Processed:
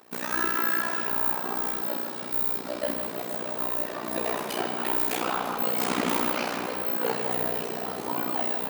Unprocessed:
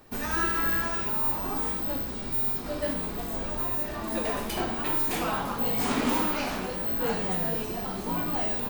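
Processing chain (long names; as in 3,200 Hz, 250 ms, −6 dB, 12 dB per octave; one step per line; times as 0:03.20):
high-pass filter 270 Hz 12 dB per octave
amplitude modulation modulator 61 Hz, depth 100%
tape delay 156 ms, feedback 85%, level −9 dB, low-pass 3,900 Hz
level +5 dB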